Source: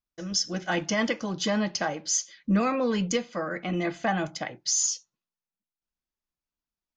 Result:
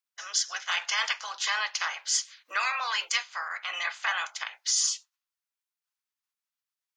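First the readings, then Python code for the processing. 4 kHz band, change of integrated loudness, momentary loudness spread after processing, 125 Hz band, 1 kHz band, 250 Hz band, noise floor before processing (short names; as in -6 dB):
+3.5 dB, -1.0 dB, 7 LU, under -40 dB, -0.5 dB, under -40 dB, under -85 dBFS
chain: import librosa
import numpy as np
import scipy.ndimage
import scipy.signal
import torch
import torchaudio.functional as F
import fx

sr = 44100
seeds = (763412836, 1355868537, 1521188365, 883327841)

y = fx.spec_clip(x, sr, under_db=19)
y = scipy.signal.sosfilt(scipy.signal.butter(4, 960.0, 'highpass', fs=sr, output='sos'), y)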